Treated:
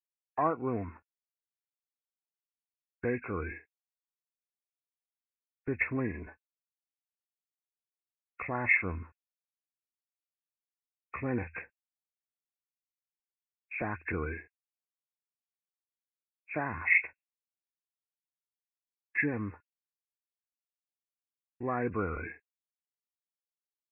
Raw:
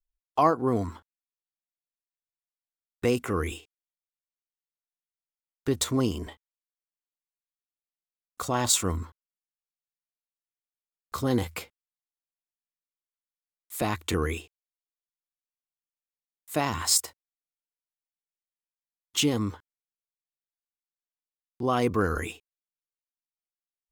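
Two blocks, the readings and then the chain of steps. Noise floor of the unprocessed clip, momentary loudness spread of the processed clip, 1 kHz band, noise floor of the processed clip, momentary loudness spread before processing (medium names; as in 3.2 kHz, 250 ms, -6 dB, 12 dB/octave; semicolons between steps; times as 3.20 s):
under -85 dBFS, 18 LU, -7.5 dB, under -85 dBFS, 15 LU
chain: knee-point frequency compression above 1.4 kHz 4:1; expander -39 dBFS; trim -7.5 dB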